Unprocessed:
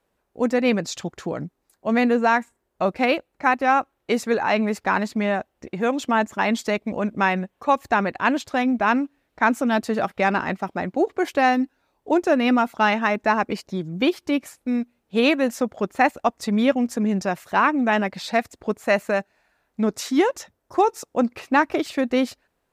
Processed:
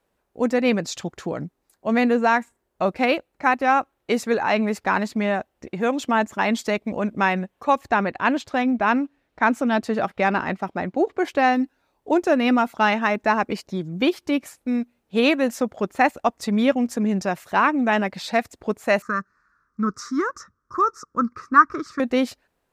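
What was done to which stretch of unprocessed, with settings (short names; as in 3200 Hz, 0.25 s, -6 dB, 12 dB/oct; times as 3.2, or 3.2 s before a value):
7.81–11.56 high shelf 7900 Hz -9 dB
19.02–22 EQ curve 190 Hz 0 dB, 470 Hz -9 dB, 780 Hz -25 dB, 1200 Hz +15 dB, 2900 Hz -25 dB, 5500 Hz -2 dB, 12000 Hz -20 dB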